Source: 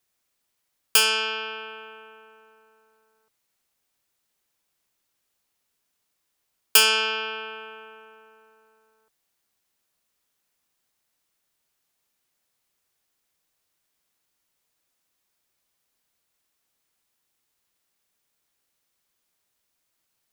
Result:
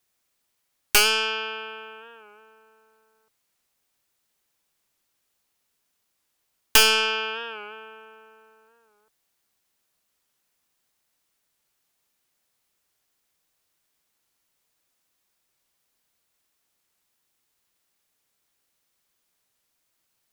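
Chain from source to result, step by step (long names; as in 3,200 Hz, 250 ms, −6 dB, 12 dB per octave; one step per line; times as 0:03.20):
stylus tracing distortion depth 0.11 ms
wow of a warped record 45 rpm, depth 100 cents
level +1.5 dB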